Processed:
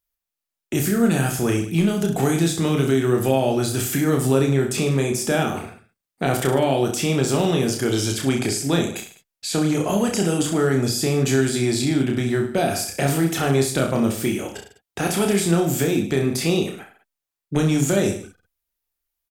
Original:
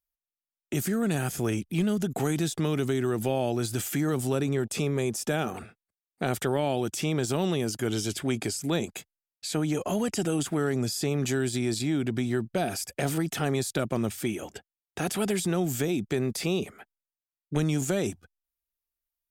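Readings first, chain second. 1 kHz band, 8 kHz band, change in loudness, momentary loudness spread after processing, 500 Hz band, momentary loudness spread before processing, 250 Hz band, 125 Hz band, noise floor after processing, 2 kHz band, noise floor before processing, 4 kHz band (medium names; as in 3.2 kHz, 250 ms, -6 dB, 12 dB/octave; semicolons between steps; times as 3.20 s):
+8.0 dB, +7.5 dB, +7.5 dB, 7 LU, +8.0 dB, 5 LU, +7.5 dB, +7.5 dB, under -85 dBFS, +7.5 dB, under -85 dBFS, +7.5 dB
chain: reverse bouncing-ball echo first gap 30 ms, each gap 1.15×, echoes 5; trim +5.5 dB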